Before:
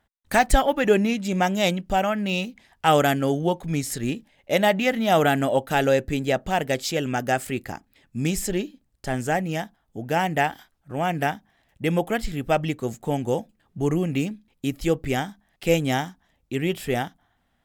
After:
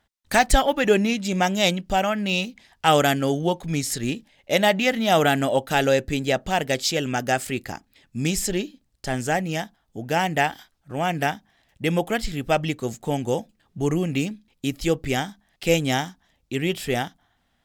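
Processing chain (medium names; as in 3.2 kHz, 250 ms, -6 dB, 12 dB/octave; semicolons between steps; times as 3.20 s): peaking EQ 4.8 kHz +6 dB 1.7 oct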